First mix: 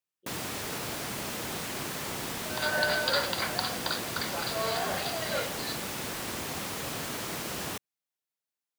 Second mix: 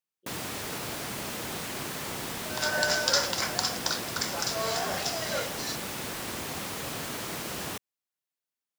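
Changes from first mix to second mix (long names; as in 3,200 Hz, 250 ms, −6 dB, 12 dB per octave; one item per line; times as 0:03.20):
second sound: remove linear-phase brick-wall low-pass 4,900 Hz
reverb: off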